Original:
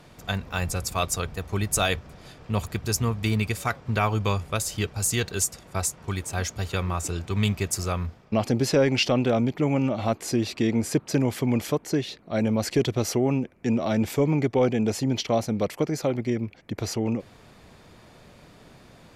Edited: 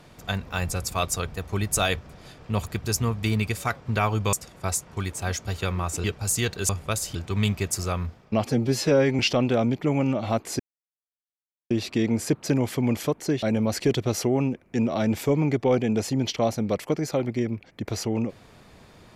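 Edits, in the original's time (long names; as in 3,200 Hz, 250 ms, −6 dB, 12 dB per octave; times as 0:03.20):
0:04.33–0:04.79: swap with 0:05.44–0:07.15
0:08.46–0:08.95: time-stretch 1.5×
0:10.35: splice in silence 1.11 s
0:12.07–0:12.33: remove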